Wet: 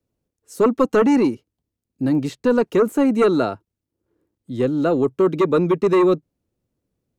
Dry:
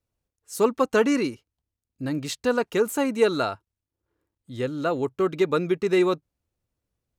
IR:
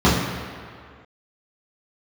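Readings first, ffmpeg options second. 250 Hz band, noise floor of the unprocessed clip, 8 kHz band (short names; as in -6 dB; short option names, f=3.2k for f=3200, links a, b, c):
+8.0 dB, under -85 dBFS, n/a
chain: -filter_complex "[0:a]acrossover=split=140|490|2500[a][b][c][d];[b]aeval=exprs='0.224*sin(PI/2*2.51*val(0)/0.224)':c=same[e];[d]alimiter=level_in=5.5dB:limit=-24dB:level=0:latency=1:release=315,volume=-5.5dB[f];[a][e][c][f]amix=inputs=4:normalize=0"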